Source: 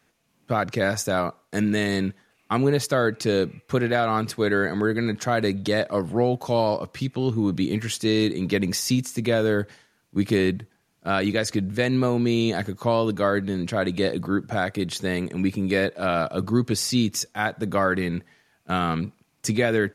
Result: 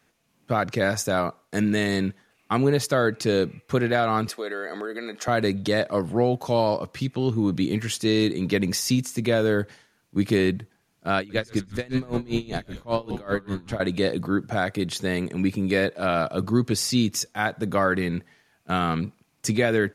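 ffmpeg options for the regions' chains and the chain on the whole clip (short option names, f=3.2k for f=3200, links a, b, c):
-filter_complex "[0:a]asettb=1/sr,asplit=3[a][b][c];[a]atrim=end=4.284[d];[b]atrim=start=4.28:end=5.28,asetpts=PTS-STARTPTS,afade=t=in:d=0.004:c=qsin,afade=t=out:st=0.996:d=0.004:c=qsin,highpass=f=280:w=0.5412,highpass=f=280:w=1.3066,acompressor=threshold=-28dB:ratio=3:attack=3.2:release=140:knee=1:detection=peak,aecho=1:1:1.6:0.35,atrim=end_sample=44100[e];[c]atrim=start=5.276[f];[d][e]acrossfade=d=0.004:c1=hsin:c2=qsin[g];[g][f]acrossfade=d=0.004:c1=qsin:c2=hsin,asettb=1/sr,asplit=3[h][i][j];[h]atrim=end=11.184[k];[i]atrim=start=11.18:end=13.8,asetpts=PTS-STARTPTS,afade=t=in:d=0.004:c=qsin,afade=t=out:st=2.616:d=0.004:c=qsin,asplit=9[l][m][n][o][p][q][r][s][t];[m]adelay=113,afreqshift=-97,volume=-10.5dB[u];[n]adelay=226,afreqshift=-194,volume=-14.7dB[v];[o]adelay=339,afreqshift=-291,volume=-18.8dB[w];[p]adelay=452,afreqshift=-388,volume=-23dB[x];[q]adelay=565,afreqshift=-485,volume=-27.1dB[y];[r]adelay=678,afreqshift=-582,volume=-31.3dB[z];[s]adelay=791,afreqshift=-679,volume=-35.4dB[aa];[t]adelay=904,afreqshift=-776,volume=-39.6dB[ab];[l][u][v][w][x][y][z][aa][ab]amix=inputs=9:normalize=0,atrim=end_sample=115542,aeval=exprs='val(0)*pow(10,-24*(0.5-0.5*cos(2*PI*5.1*n/s))/20)':c=same[ac];[j]atrim=start=13.796[ad];[k][ac]acrossfade=d=0.004:c1=hsin:c2=qsin[ae];[ae][ad]acrossfade=d=0.004:c1=qsin:c2=hsin"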